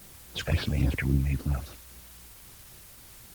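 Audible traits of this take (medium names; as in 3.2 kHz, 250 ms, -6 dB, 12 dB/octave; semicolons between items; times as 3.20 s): phasing stages 6, 3.7 Hz, lowest notch 270–2500 Hz; a quantiser's noise floor 8-bit, dither triangular; Opus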